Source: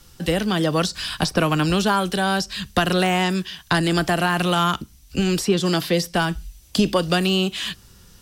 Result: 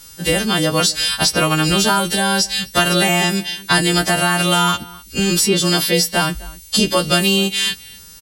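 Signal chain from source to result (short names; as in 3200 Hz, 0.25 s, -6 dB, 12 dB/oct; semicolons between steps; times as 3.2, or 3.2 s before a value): frequency quantiser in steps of 2 st; outdoor echo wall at 44 m, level -21 dB; gain +3 dB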